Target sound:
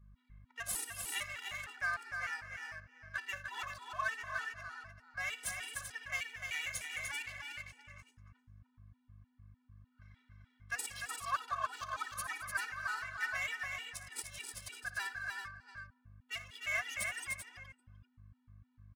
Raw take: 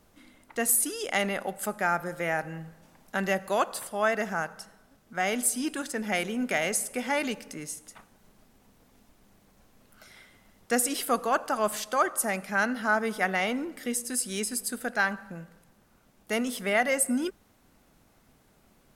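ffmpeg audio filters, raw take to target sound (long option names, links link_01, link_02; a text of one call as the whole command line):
ffmpeg -i in.wav -filter_complex "[0:a]highpass=frequency=1100:width=0.5412,highpass=frequency=1100:width=1.3066,aecho=1:1:1.8:0.6,aeval=exprs='val(0)+0.00251*(sin(2*PI*50*n/s)+sin(2*PI*2*50*n/s)/2+sin(2*PI*3*50*n/s)/3+sin(2*PI*4*50*n/s)/4+sin(2*PI*5*50*n/s)/5)':channel_layout=same,asplit=2[link_01][link_02];[link_02]adelay=390.7,volume=-9dB,highshelf=frequency=4000:gain=-8.79[link_03];[link_01][link_03]amix=inputs=2:normalize=0,adynamicsmooth=sensitivity=5.5:basefreq=1400,asplit=2[link_04][link_05];[link_05]aecho=0:1:58|81|167|217|299|388:0.188|0.119|0.106|0.15|0.531|0.398[link_06];[link_04][link_06]amix=inputs=2:normalize=0,afftfilt=real='re*gt(sin(2*PI*3.3*pts/sr)*(1-2*mod(floor(b*sr/1024/250),2)),0)':imag='im*gt(sin(2*PI*3.3*pts/sr)*(1-2*mod(floor(b*sr/1024/250),2)),0)':win_size=1024:overlap=0.75,volume=-6dB" out.wav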